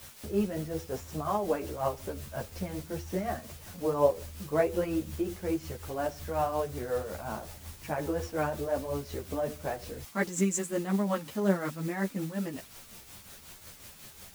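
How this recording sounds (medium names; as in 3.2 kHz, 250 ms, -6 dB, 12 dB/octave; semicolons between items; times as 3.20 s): a quantiser's noise floor 8-bit, dither triangular; tremolo triangle 5.5 Hz, depth 60%; a shimmering, thickened sound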